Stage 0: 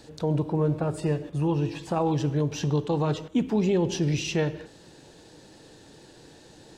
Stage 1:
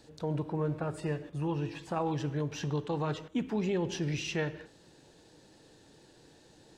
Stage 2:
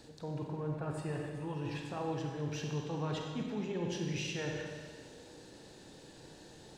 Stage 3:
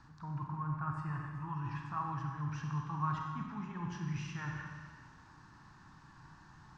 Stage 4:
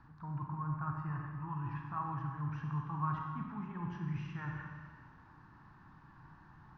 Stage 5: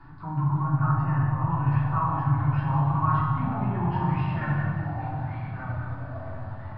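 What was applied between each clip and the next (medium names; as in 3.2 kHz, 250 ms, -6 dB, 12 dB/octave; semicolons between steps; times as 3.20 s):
dynamic bell 1.7 kHz, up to +7 dB, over -48 dBFS, Q 0.96; trim -8 dB
reverse; compression, threshold -39 dBFS, peak gain reduction 11.5 dB; reverse; reverberation RT60 1.8 s, pre-delay 31 ms, DRR 1.5 dB; trim +2.5 dB
FFT filter 150 Hz 0 dB, 340 Hz -14 dB, 500 Hz -29 dB, 1.1 kHz +11 dB, 2.1 kHz -6 dB, 3.7 kHz -17 dB, 5.6 kHz -10 dB, 11 kHz -29 dB; trim +1.5 dB
Bessel low-pass 1.9 kHz, order 2
resampled via 11.025 kHz; simulated room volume 170 m³, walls furnished, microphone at 3.3 m; ever faster or slower copies 346 ms, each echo -3 st, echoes 3, each echo -6 dB; trim +5 dB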